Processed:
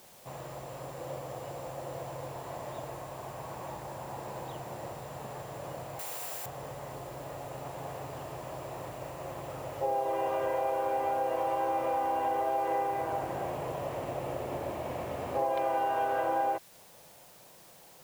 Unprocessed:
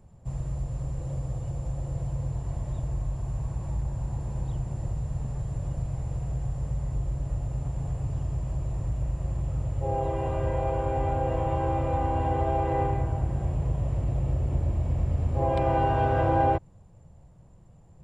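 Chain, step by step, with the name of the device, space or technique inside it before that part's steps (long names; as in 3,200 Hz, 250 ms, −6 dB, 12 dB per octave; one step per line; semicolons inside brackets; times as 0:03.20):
baby monitor (band-pass filter 500–4,000 Hz; downward compressor, threshold −36 dBFS, peak gain reduction 14 dB; white noise bed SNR 22 dB)
0:05.99–0:06.46: spectral tilt +4.5 dB per octave
level +8.5 dB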